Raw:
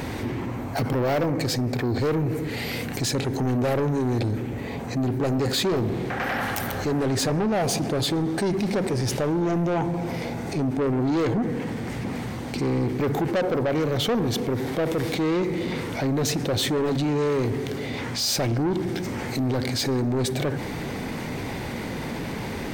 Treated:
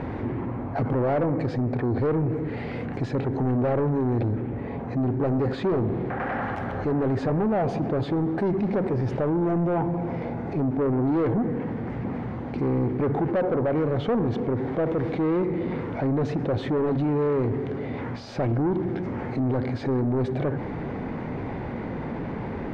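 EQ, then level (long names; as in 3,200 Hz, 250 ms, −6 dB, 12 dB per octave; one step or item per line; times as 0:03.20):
low-pass filter 1,400 Hz 12 dB per octave
0.0 dB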